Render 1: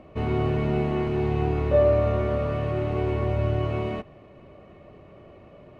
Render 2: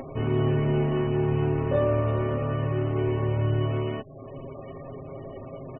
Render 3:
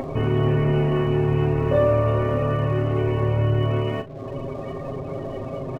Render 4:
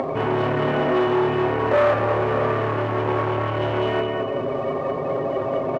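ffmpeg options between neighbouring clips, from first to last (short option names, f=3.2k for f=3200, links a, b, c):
-af "acompressor=mode=upward:threshold=-28dB:ratio=2.5,aecho=1:1:7.5:0.82,afftfilt=real='re*gte(hypot(re,im),0.0112)':imag='im*gte(hypot(re,im),0.0112)':win_size=1024:overlap=0.75,volume=-2dB"
-filter_complex "[0:a]asplit=2[a][b];[b]acompressor=threshold=-32dB:ratio=6,volume=3dB[c];[a][c]amix=inputs=2:normalize=0,aeval=exprs='sgn(val(0))*max(abs(val(0))-0.00299,0)':c=same,asplit=2[d][e];[e]adelay=39,volume=-10.5dB[f];[d][f]amix=inputs=2:normalize=0,volume=1.5dB"
-af "aecho=1:1:207|414|621|828|1035:0.631|0.271|0.117|0.0502|0.0216,volume=21dB,asoftclip=hard,volume=-21dB,bandpass=f=960:t=q:w=0.55:csg=0,volume=8.5dB"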